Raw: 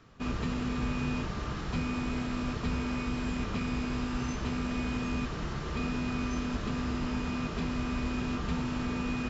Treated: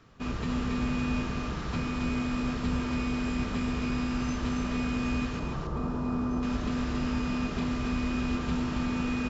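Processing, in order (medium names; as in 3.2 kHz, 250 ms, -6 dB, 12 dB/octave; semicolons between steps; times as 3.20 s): 5.39–6.43 s: resonant high shelf 1.5 kHz -11.5 dB, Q 1.5; delay 278 ms -4 dB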